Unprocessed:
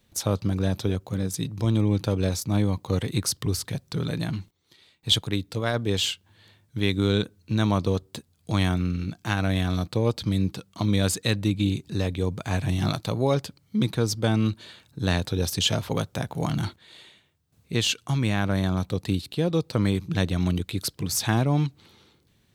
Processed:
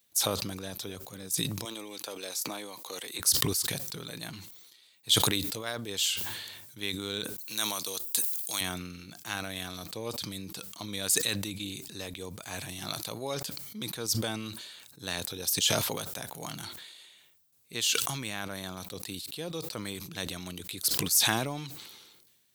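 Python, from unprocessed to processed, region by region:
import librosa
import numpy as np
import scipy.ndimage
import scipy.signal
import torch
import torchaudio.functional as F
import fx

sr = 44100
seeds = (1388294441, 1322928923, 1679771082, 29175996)

y = fx.chain(x, sr, fx.highpass(hz=390.0, slope=12),
    fx.band_squash(depth_pct=70), at=(1.65, 3.2))
y = fx.chain(y, sr, fx.riaa(side='recording'),
    fx.band_squash(depth_pct=40), at=(7.38, 8.61))
y = fx.riaa(y, sr, side='recording')
y = fx.sustainer(y, sr, db_per_s=38.0)
y = y * librosa.db_to_amplitude(-9.5)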